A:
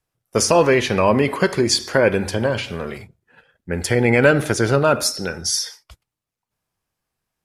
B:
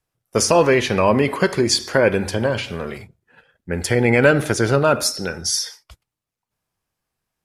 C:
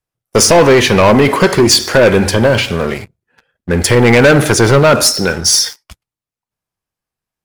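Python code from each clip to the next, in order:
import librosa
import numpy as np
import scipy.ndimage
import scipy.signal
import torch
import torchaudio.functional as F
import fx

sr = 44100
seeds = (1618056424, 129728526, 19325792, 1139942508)

y1 = x
y2 = fx.leveller(y1, sr, passes=3)
y2 = F.gain(torch.from_numpy(y2), 1.0).numpy()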